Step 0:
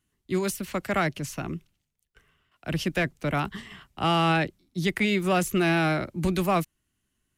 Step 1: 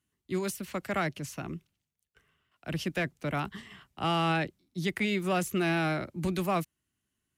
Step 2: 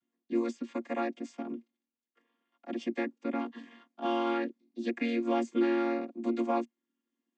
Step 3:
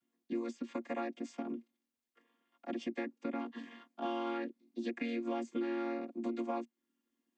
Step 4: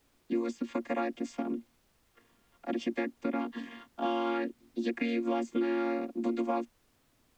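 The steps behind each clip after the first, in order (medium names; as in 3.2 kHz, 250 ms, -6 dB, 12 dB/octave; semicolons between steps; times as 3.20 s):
high-pass 61 Hz; trim -5 dB
vocoder on a held chord minor triad, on A#3
compression 3:1, threshold -38 dBFS, peak gain reduction 11.5 dB; trim +1.5 dB
added noise pink -76 dBFS; trim +6 dB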